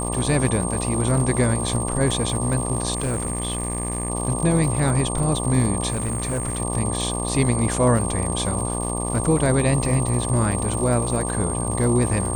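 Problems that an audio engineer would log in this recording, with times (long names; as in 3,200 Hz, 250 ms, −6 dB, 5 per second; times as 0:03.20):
mains buzz 60 Hz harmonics 20 −27 dBFS
surface crackle 170 per second −29 dBFS
whistle 8,600 Hz −28 dBFS
0:02.94–0:04.10: clipping −20 dBFS
0:05.90–0:06.60: clipping −20.5 dBFS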